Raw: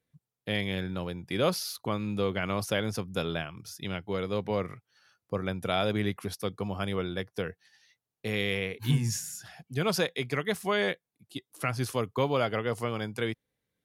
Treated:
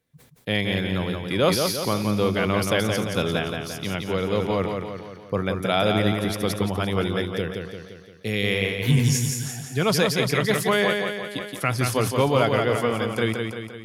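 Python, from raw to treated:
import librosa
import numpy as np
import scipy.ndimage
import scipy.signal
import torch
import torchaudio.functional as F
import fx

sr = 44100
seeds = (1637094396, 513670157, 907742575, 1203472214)

y = fx.peak_eq(x, sr, hz=1000.0, db=-7.5, octaves=1.4, at=(7.24, 8.44))
y = fx.echo_feedback(y, sr, ms=173, feedback_pct=53, wet_db=-5.0)
y = fx.sustainer(y, sr, db_per_s=84.0)
y = y * librosa.db_to_amplitude(6.0)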